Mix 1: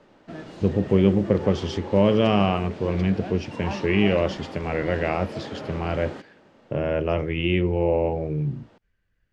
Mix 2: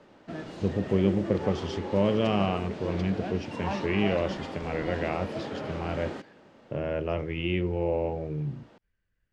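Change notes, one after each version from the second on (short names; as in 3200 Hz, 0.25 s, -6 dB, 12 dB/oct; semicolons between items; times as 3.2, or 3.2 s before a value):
speech -6.0 dB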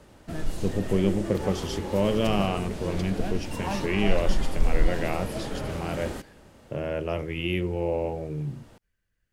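background: remove HPF 190 Hz 12 dB/oct; master: remove air absorption 150 m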